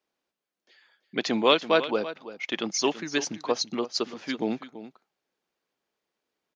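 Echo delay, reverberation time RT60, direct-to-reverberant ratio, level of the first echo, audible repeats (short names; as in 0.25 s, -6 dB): 0.333 s, none, none, -14.0 dB, 1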